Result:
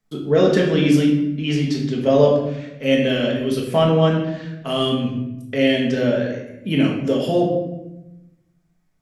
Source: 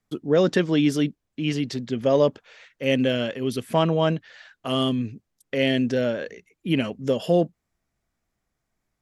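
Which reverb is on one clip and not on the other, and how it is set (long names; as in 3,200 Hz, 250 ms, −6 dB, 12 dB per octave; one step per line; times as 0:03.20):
rectangular room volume 350 cubic metres, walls mixed, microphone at 1.5 metres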